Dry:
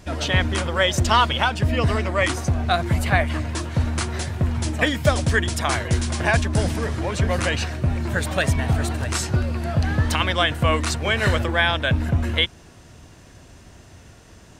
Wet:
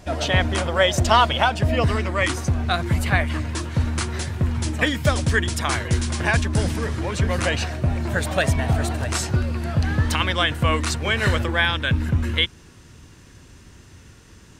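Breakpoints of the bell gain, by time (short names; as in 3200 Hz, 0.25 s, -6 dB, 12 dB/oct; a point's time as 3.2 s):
bell 670 Hz 0.5 oct
+6.5 dB
from 1.84 s -5 dB
from 7.42 s +3.5 dB
from 9.31 s -4.5 dB
from 11.65 s -12 dB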